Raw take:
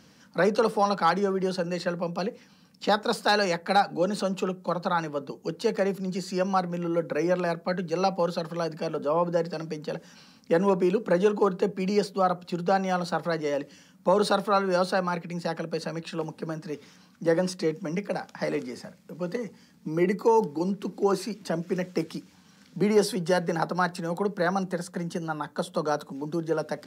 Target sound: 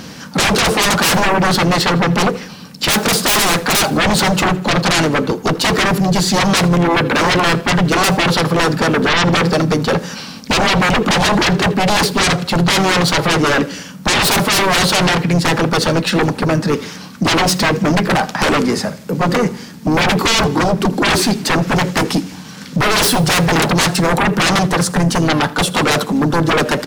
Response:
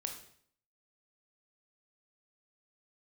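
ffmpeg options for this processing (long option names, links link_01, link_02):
-filter_complex "[0:a]aeval=exprs='0.266*sin(PI/2*7.94*val(0)/0.266)':channel_layout=same,asplit=2[link_01][link_02];[link_02]asetrate=35002,aresample=44100,atempo=1.25992,volume=-10dB[link_03];[link_01][link_03]amix=inputs=2:normalize=0,aecho=1:1:81|162|243|324:0.0841|0.0429|0.0219|0.0112,asplit=2[link_04][link_05];[1:a]atrim=start_sample=2205,highshelf=frequency=9300:gain=11[link_06];[link_05][link_06]afir=irnorm=-1:irlink=0,volume=-17.5dB[link_07];[link_04][link_07]amix=inputs=2:normalize=0"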